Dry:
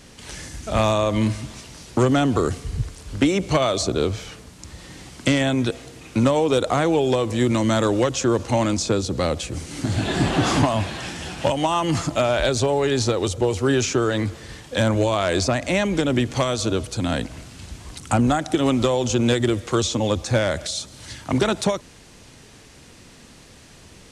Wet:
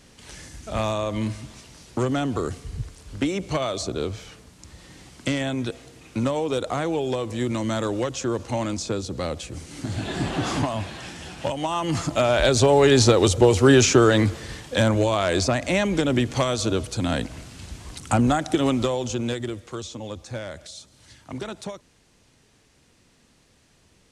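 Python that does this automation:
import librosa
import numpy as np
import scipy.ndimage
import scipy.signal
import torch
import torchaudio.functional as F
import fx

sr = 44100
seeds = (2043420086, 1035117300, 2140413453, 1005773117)

y = fx.gain(x, sr, db=fx.line((11.58, -6.0), (12.84, 5.0), (14.06, 5.0), (15.0, -1.0), (18.58, -1.0), (19.79, -13.0)))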